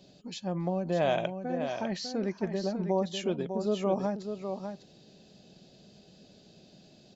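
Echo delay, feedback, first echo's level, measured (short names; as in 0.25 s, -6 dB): 0.6 s, no steady repeat, -7.5 dB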